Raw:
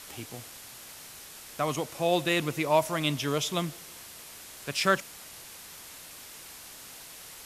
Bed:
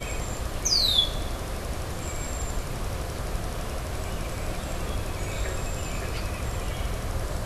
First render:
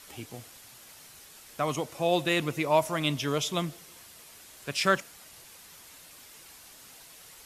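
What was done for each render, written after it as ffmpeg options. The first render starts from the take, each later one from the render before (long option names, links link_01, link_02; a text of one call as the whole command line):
ffmpeg -i in.wav -af "afftdn=noise_reduction=6:noise_floor=-47" out.wav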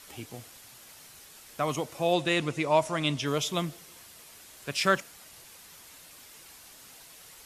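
ffmpeg -i in.wav -filter_complex "[0:a]asettb=1/sr,asplit=3[link_01][link_02][link_03];[link_01]atrim=end=2.134[link_04];[link_02]atrim=start=2.13:end=3.26,asetpts=PTS-STARTPTS,afade=type=in:duration=0.004:curve=qsin,afade=type=out:start_time=1.126:duration=0.004:curve=qsin,lowpass=frequency=9800:width=0.5412,lowpass=frequency=9800:width=1.3066[link_05];[link_03]atrim=start=3.256[link_06];[link_04][link_05]acrossfade=duration=0.004:curve1=hsin:curve2=qsin[link_07];[link_07][link_06]acrossfade=duration=0.004:curve1=qsin:curve2=hsin" out.wav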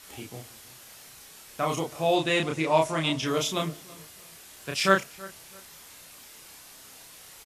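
ffmpeg -i in.wav -filter_complex "[0:a]asplit=2[link_01][link_02];[link_02]adelay=31,volume=-2dB[link_03];[link_01][link_03]amix=inputs=2:normalize=0,asplit=2[link_04][link_05];[link_05]adelay=327,lowpass=frequency=2000:poles=1,volume=-20dB,asplit=2[link_06][link_07];[link_07]adelay=327,lowpass=frequency=2000:poles=1,volume=0.3[link_08];[link_04][link_06][link_08]amix=inputs=3:normalize=0" out.wav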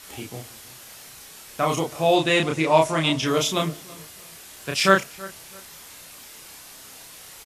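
ffmpeg -i in.wav -af "volume=5dB,alimiter=limit=-2dB:level=0:latency=1" out.wav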